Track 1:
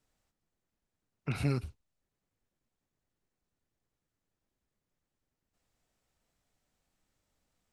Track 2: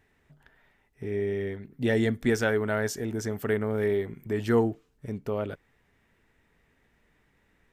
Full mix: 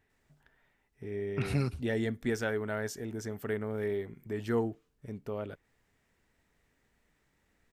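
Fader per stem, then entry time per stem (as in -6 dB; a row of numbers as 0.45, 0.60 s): +0.5, -7.0 dB; 0.10, 0.00 s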